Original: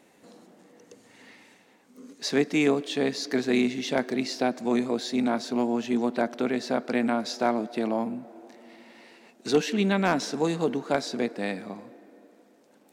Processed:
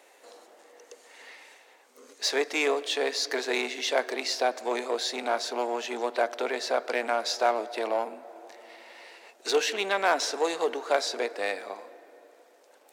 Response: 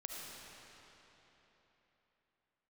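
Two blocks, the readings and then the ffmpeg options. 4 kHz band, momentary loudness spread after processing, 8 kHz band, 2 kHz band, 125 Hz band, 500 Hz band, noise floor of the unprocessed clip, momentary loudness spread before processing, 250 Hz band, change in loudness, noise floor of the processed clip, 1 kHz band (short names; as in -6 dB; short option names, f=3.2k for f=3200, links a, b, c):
+4.0 dB, 21 LU, +4.0 dB, +2.5 dB, under -25 dB, -0.5 dB, -59 dBFS, 9 LU, -13.5 dB, -1.5 dB, -58 dBFS, +2.5 dB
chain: -filter_complex "[0:a]asplit=2[a][b];[b]asoftclip=type=hard:threshold=-26.5dB,volume=-3.5dB[c];[a][c]amix=inputs=2:normalize=0,highpass=f=450:w=0.5412,highpass=f=450:w=1.3066"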